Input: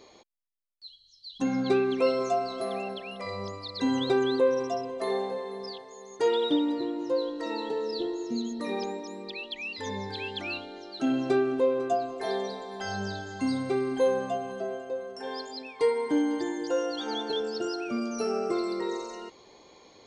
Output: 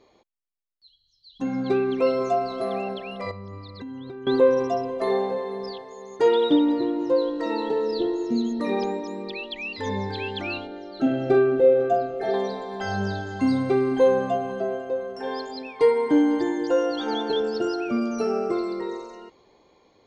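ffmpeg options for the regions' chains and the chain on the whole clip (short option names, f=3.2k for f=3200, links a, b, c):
-filter_complex "[0:a]asettb=1/sr,asplit=3[a][b][c];[a]atrim=end=3.314[d];[b]atrim=start=3.31:end=4.27,asetpts=PTS-STARTPTS,afade=t=in:d=0.004:c=qsin,afade=t=out:st=0.956:d=0.004:c=qsin,lowpass=f=1.4k:p=1,equalizer=f=630:t=o:w=1.4:g=-10,acompressor=threshold=-40dB:ratio=10:attack=3.2:release=140:knee=1:detection=peak[e];[c]atrim=start=4.266[f];[d][e]acrossfade=d=0.004:c1=hsin:c2=qsin[g];[g][f]acrossfade=d=0.004:c1=qsin:c2=hsin,asettb=1/sr,asplit=3[h][i][j];[h]atrim=end=10.674[k];[i]atrim=start=10.67:end=12.34,asetpts=PTS-STARTPTS,afade=t=in:d=0.004:c=qsin,afade=t=out:st=1.666:d=0.004:c=qsin,asuperstop=centerf=1000:order=12:qfactor=4.2,highshelf=f=2.3k:g=-8,asplit=2[l][m];[m]adelay=44,volume=-6dB[n];[l][n]amix=inputs=2:normalize=0,atrim=end_sample=73647[o];[j]atrim=start=12.336[p];[k][o]acrossfade=d=0.004:c1=hsin:c2=qsin[q];[q][p]acrossfade=d=0.004:c1=qsin:c2=hsin,lowpass=f=2.5k:p=1,lowshelf=f=120:g=4.5,dynaudnorm=f=210:g=17:m=11.5dB,volume=-4.5dB"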